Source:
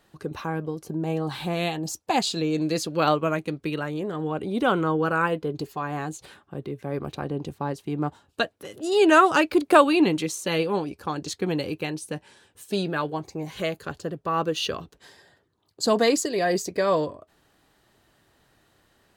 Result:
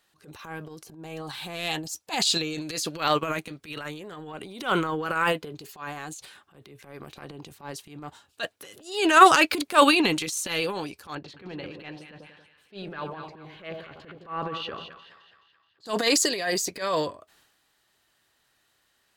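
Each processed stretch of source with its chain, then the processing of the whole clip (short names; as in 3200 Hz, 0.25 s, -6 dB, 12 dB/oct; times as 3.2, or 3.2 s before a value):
11.15–15.86 air absorption 410 m + split-band echo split 980 Hz, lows 92 ms, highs 0.213 s, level -9.5 dB
whole clip: tilt shelf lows -7.5 dB, about 920 Hz; transient shaper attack -11 dB, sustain +8 dB; upward expander 1.5:1, over -37 dBFS; gain +4 dB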